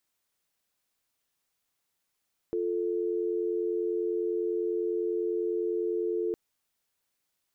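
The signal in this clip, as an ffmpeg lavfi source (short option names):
-f lavfi -i "aevalsrc='0.0335*(sin(2*PI*350*t)+sin(2*PI*440*t))':d=3.81:s=44100"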